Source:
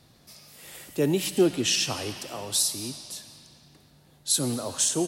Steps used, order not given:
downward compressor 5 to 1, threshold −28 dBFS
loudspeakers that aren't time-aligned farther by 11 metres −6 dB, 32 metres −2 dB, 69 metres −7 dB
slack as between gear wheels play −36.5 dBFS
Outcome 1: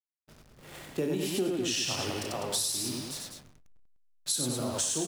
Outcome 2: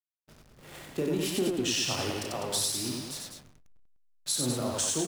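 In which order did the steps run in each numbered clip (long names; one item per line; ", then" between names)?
slack as between gear wheels, then loudspeakers that aren't time-aligned, then downward compressor
downward compressor, then slack as between gear wheels, then loudspeakers that aren't time-aligned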